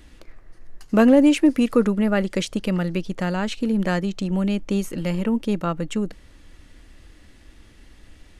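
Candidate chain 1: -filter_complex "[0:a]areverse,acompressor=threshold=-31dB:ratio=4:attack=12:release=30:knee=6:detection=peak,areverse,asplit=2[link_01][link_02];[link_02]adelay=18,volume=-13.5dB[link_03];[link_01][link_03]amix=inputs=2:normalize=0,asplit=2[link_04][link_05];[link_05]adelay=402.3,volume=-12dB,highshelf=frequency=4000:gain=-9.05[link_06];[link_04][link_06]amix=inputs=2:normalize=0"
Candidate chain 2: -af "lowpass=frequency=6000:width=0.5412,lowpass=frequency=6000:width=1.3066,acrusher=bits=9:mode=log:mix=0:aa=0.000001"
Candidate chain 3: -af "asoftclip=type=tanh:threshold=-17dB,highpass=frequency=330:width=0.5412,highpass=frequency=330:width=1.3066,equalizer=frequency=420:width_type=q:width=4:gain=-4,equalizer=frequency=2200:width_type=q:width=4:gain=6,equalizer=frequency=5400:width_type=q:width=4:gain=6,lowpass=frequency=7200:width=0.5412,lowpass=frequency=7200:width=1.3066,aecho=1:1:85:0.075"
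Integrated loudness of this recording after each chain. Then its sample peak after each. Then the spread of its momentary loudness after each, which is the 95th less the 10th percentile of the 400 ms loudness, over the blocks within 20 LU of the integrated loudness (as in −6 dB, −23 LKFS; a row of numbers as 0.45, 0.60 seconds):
−30.5, −21.5, −30.5 LKFS; −17.5, −5.0, −12.0 dBFS; 6, 11, 9 LU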